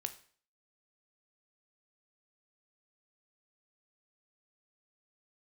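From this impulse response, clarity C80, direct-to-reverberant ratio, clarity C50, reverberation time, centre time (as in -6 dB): 18.0 dB, 8.5 dB, 14.0 dB, 0.50 s, 7 ms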